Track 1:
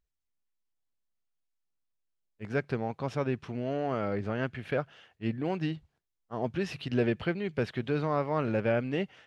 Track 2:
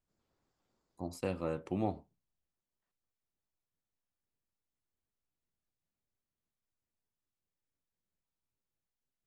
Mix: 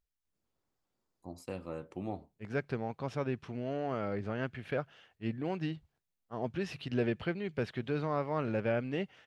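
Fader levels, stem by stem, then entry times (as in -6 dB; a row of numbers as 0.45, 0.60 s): -4.0, -5.0 dB; 0.00, 0.25 s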